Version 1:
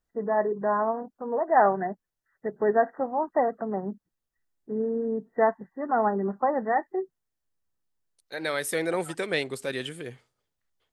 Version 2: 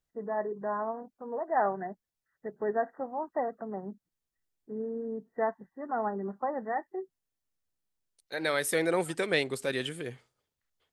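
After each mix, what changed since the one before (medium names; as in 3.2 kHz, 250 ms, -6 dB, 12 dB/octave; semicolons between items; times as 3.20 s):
first voice -7.5 dB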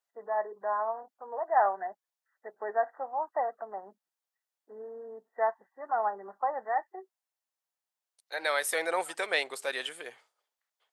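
master: add resonant high-pass 750 Hz, resonance Q 1.5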